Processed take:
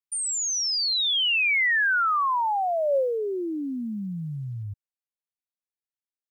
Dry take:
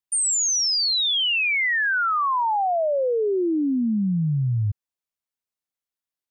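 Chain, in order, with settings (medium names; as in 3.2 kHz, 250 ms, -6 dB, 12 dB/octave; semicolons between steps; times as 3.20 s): Doppler pass-by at 1.71 s, 6 m/s, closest 5 m; dynamic bell 550 Hz, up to +6 dB, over -45 dBFS, Q 5.8; short-mantissa float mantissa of 6-bit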